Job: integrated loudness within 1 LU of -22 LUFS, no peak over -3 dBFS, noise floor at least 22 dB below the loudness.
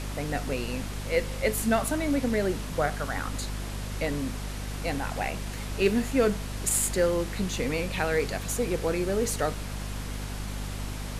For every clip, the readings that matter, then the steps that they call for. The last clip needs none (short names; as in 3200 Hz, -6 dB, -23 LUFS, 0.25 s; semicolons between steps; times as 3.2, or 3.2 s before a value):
hum 50 Hz; harmonics up to 250 Hz; hum level -32 dBFS; noise floor -35 dBFS; noise floor target -51 dBFS; loudness -29.0 LUFS; peak -10.5 dBFS; loudness target -22.0 LUFS
-> notches 50/100/150/200/250 Hz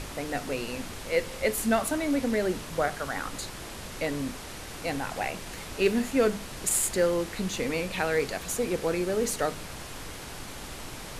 hum none; noise floor -41 dBFS; noise floor target -52 dBFS
-> noise print and reduce 11 dB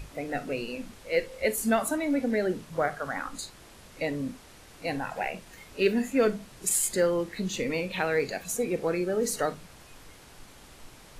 noise floor -51 dBFS; loudness -29.0 LUFS; peak -11.5 dBFS; loudness target -22.0 LUFS
-> gain +7 dB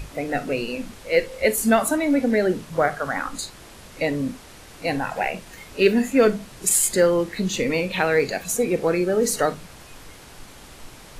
loudness -22.0 LUFS; peak -4.5 dBFS; noise floor -44 dBFS